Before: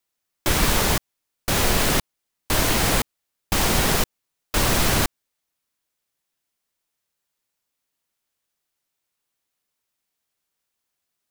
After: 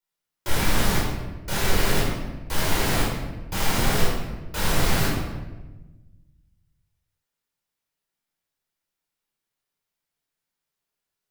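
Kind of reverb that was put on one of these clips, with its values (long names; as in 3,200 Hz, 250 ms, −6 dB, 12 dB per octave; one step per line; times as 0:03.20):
rectangular room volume 690 cubic metres, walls mixed, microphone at 4.7 metres
level −13.5 dB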